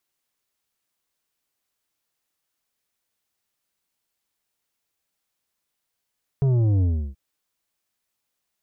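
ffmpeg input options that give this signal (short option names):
-f lavfi -i "aevalsrc='0.133*clip((0.73-t)/0.33,0,1)*tanh(2.66*sin(2*PI*140*0.73/log(65/140)*(exp(log(65/140)*t/0.73)-1)))/tanh(2.66)':d=0.73:s=44100"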